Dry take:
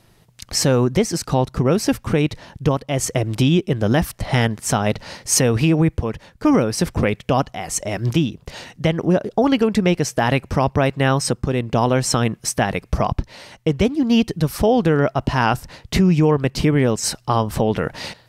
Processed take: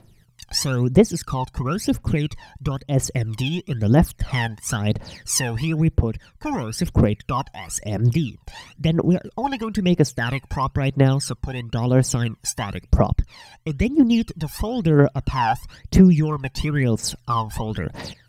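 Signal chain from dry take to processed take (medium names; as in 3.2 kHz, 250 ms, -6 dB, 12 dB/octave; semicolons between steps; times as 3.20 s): phaser 1 Hz, delay 1.3 ms, feedback 78%; trim -8 dB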